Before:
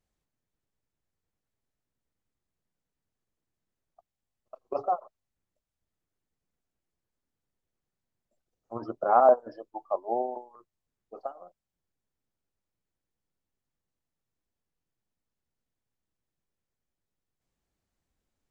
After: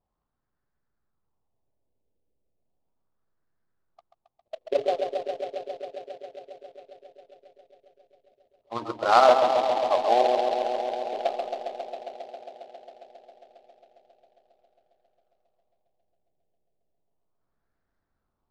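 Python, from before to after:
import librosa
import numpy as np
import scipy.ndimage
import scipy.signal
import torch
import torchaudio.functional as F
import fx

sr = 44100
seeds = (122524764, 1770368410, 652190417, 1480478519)

y = fx.filter_lfo_lowpass(x, sr, shape='sine', hz=0.35, low_hz=480.0, high_hz=1600.0, q=3.2)
y = fx.echo_bbd(y, sr, ms=135, stages=1024, feedback_pct=85, wet_db=-6.0)
y = fx.noise_mod_delay(y, sr, seeds[0], noise_hz=2600.0, depth_ms=0.03)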